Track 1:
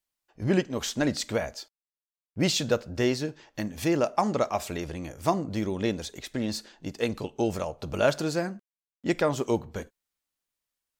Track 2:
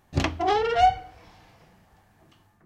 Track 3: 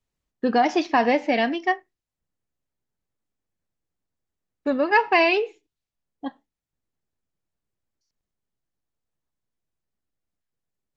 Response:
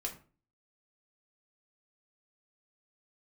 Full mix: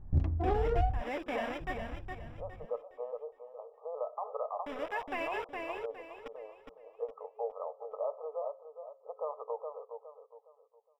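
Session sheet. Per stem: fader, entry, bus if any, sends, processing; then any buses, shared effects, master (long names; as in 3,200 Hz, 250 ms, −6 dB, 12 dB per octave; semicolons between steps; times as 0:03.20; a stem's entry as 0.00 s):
−4.5 dB, 0.00 s, bus A, no send, echo send −12 dB, brick-wall band-pass 430–1,300 Hz
−5.5 dB, 0.00 s, muted 0:01.02–0:01.60, no bus, no send, no echo send, adaptive Wiener filter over 15 samples; spectral tilt −4.5 dB per octave
−3.0 dB, 0.00 s, bus A, no send, echo send −20 dB, bit reduction 4 bits; Savitzky-Golay smoothing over 25 samples; automatic ducking −14 dB, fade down 1.75 s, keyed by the first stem
bus A: 0.0 dB, low-shelf EQ 330 Hz −8 dB; brickwall limiter −27 dBFS, peak gain reduction 11 dB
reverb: not used
echo: repeating echo 413 ms, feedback 32%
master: low-shelf EQ 95 Hz +9.5 dB; hum removal 178.9 Hz, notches 3; downward compressor 10 to 1, threshold −25 dBFS, peak gain reduction 19.5 dB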